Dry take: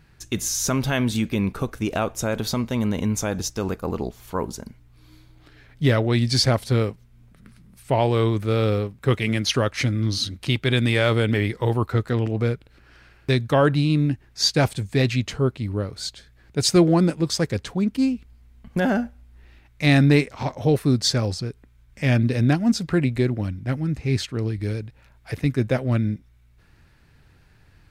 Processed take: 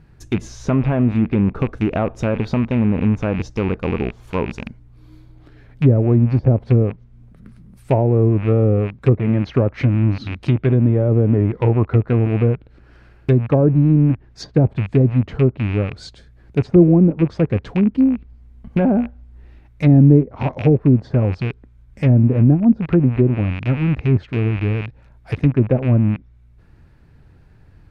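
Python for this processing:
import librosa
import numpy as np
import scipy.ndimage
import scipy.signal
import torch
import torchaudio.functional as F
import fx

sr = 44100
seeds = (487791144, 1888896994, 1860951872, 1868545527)

y = fx.rattle_buzz(x, sr, strikes_db=-32.0, level_db=-15.0)
y = fx.env_lowpass_down(y, sr, base_hz=480.0, full_db=-14.5)
y = fx.tilt_shelf(y, sr, db=7.0, hz=1300.0)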